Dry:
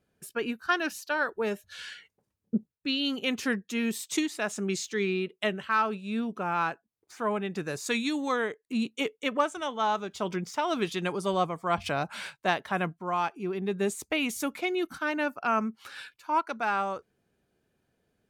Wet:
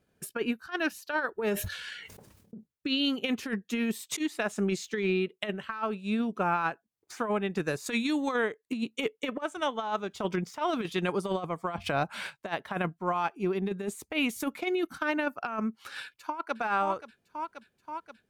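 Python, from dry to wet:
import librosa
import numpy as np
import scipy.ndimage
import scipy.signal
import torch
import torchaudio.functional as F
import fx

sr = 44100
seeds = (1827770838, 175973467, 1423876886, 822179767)

y = fx.sustainer(x, sr, db_per_s=41.0, at=(1.39, 2.56))
y = fx.echo_throw(y, sr, start_s=16.02, length_s=0.55, ms=530, feedback_pct=75, wet_db=-11.5)
y = fx.dynamic_eq(y, sr, hz=6400.0, q=0.91, threshold_db=-48.0, ratio=4.0, max_db=-5)
y = fx.transient(y, sr, attack_db=4, sustain_db=-4)
y = fx.over_compress(y, sr, threshold_db=-28.0, ratio=-0.5)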